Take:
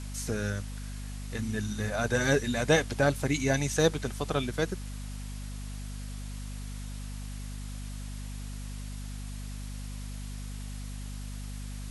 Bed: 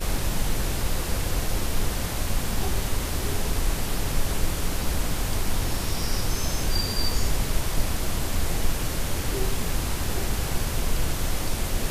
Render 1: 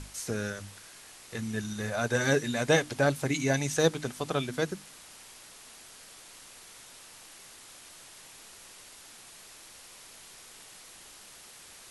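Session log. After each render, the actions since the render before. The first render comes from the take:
mains-hum notches 50/100/150/200/250/300 Hz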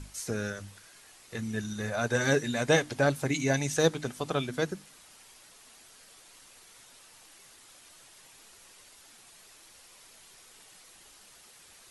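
broadband denoise 6 dB, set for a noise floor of −51 dBFS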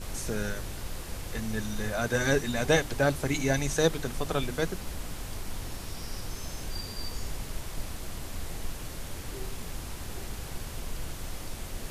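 mix in bed −11.5 dB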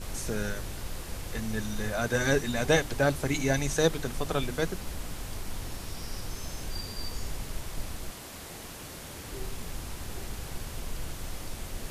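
0:08.10–0:09.31: high-pass filter 300 Hz → 95 Hz 6 dB per octave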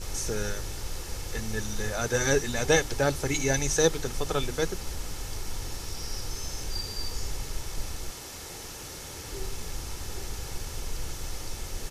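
parametric band 5,800 Hz +7.5 dB 0.62 octaves
comb filter 2.3 ms, depth 36%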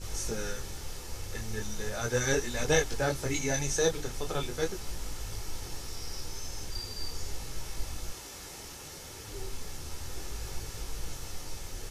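micro pitch shift up and down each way 13 cents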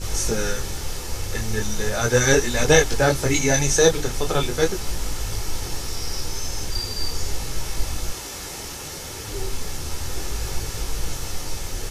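level +11 dB
brickwall limiter −1 dBFS, peak gain reduction 1 dB

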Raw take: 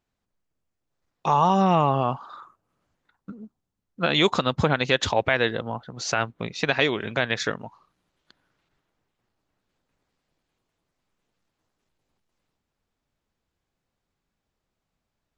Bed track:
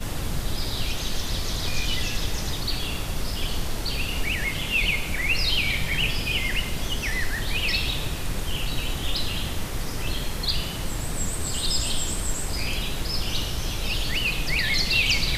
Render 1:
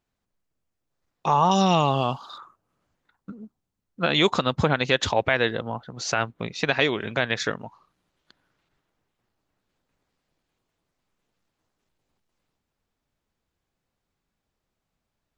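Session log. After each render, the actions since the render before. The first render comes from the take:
0:01.51–0:02.38: high shelf with overshoot 2,700 Hz +11.5 dB, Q 1.5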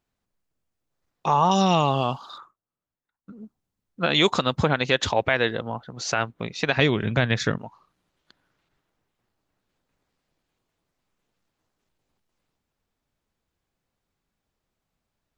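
0:02.39–0:03.38: duck −18.5 dB, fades 0.15 s
0:04.11–0:04.60: high-shelf EQ 4,800 Hz +5 dB
0:06.77–0:07.58: bass and treble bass +12 dB, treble 0 dB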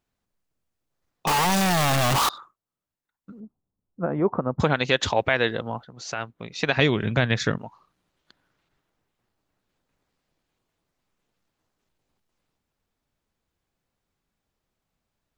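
0:01.27–0:02.29: sign of each sample alone
0:03.40–0:04.60: Bessel low-pass filter 830 Hz, order 6
0:05.85–0:06.52: clip gain −6.5 dB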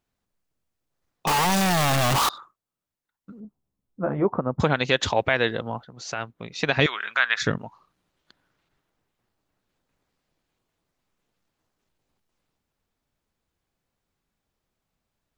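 0:03.43–0:04.25: double-tracking delay 15 ms −5.5 dB
0:06.86–0:07.42: high-pass with resonance 1,300 Hz, resonance Q 2.6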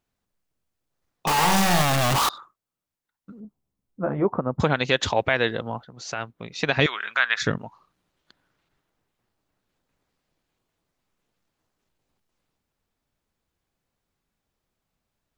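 0:01.33–0:01.82: flutter between parallel walls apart 7.8 metres, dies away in 0.61 s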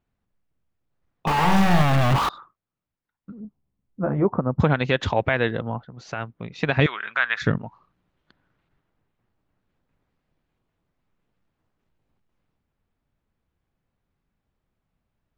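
bass and treble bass +6 dB, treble −14 dB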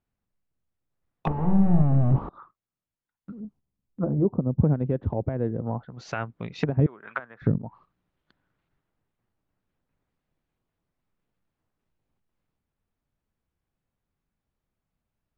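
treble cut that deepens with the level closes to 380 Hz, closed at −20.5 dBFS
noise gate −53 dBFS, range −6 dB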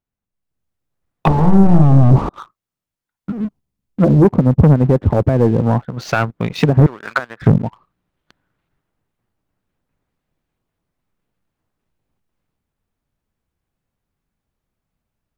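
automatic gain control gain up to 9 dB
leveller curve on the samples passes 2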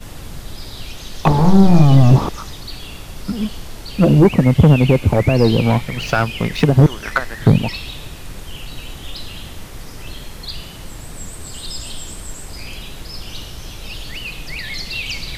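mix in bed track −4 dB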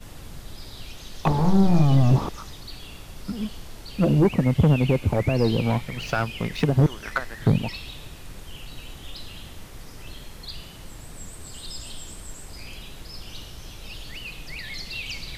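level −8 dB

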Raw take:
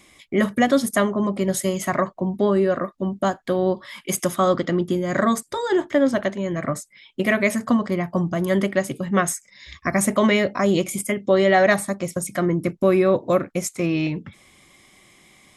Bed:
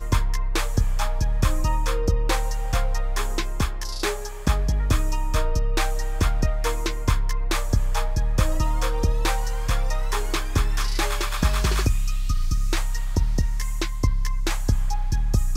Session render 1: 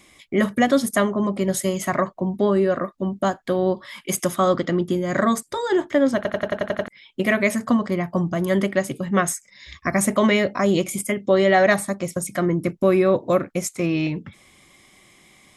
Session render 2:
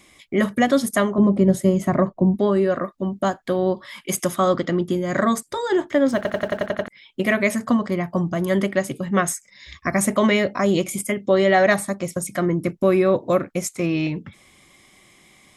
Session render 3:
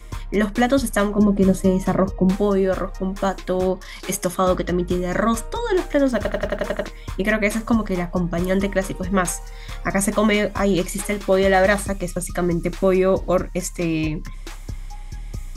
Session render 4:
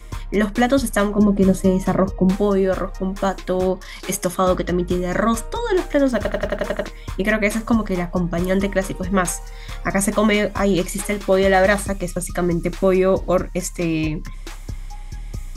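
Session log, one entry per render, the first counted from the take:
0:06.16: stutter in place 0.09 s, 8 plays
0:01.18–0:02.36: tilt shelving filter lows +8.5 dB, about 760 Hz; 0:06.08–0:06.67: mu-law and A-law mismatch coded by mu
mix in bed −10.5 dB
level +1 dB

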